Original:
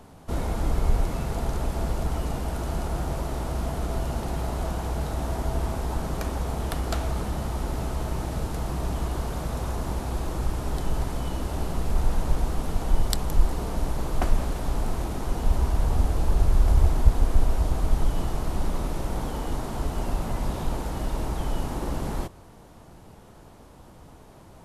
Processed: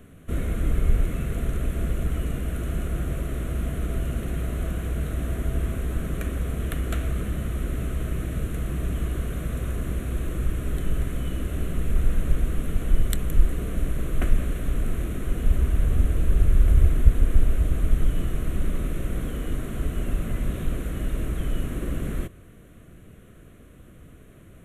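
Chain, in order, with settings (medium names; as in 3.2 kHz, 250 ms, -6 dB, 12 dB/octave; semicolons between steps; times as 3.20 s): static phaser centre 2.1 kHz, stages 4; trim +2 dB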